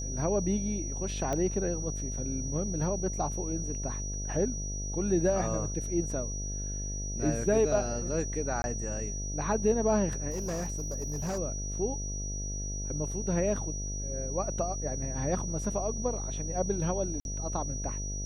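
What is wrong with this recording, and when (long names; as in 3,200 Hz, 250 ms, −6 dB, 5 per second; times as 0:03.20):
mains buzz 50 Hz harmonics 14 −36 dBFS
whistle 5,800 Hz −38 dBFS
0:01.33: click −19 dBFS
0:08.62–0:08.64: drop-out 21 ms
0:10.30–0:11.39: clipping −29.5 dBFS
0:17.20–0:17.25: drop-out 51 ms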